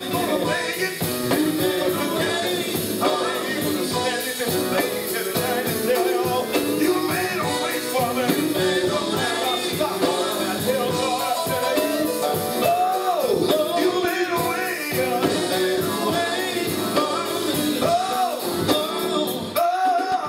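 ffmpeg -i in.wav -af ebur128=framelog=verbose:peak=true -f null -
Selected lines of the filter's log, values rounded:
Integrated loudness:
  I:         -21.9 LUFS
  Threshold: -31.9 LUFS
Loudness range:
  LRA:         1.2 LU
  Threshold: -41.9 LUFS
  LRA low:   -22.4 LUFS
  LRA high:  -21.2 LUFS
True peak:
  Peak:       -6.6 dBFS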